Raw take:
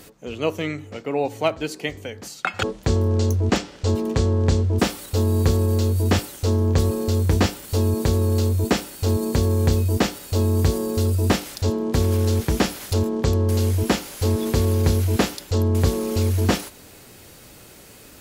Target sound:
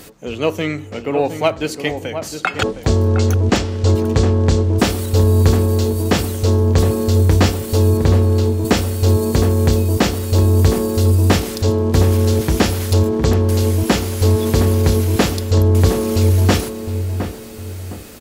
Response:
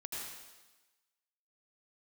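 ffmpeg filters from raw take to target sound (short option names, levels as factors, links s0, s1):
-filter_complex "[0:a]asettb=1/sr,asplit=3[s0][s1][s2];[s0]atrim=end=7.974[s3];[s1]atrim=start=7.97:end=8.65,asetpts=PTS-STARTPTS,afade=t=in:d=0.004:c=qsin,afade=t=out:st=0.676:d=0.004:c=qsin,highshelf=f=5800:g=-10[s4];[s2]atrim=start=8.646[s5];[s3][s4]acrossfade=d=0.004:c1=hsin:c2=qsin[s6];[s6][s5]acrossfade=d=0.004:c1=qsin:c2=hsin,asplit=2[s7][s8];[s8]asoftclip=type=tanh:threshold=0.0841,volume=0.376[s9];[s7][s9]amix=inputs=2:normalize=0,asplit=2[s10][s11];[s11]adelay=712,lowpass=f=1300:p=1,volume=0.398,asplit=2[s12][s13];[s13]adelay=712,lowpass=f=1300:p=1,volume=0.39,asplit=2[s14][s15];[s15]adelay=712,lowpass=f=1300:p=1,volume=0.39,asplit=2[s16][s17];[s17]adelay=712,lowpass=f=1300:p=1,volume=0.39[s18];[s10][s12][s14][s16][s18]amix=inputs=5:normalize=0,volume=1.5"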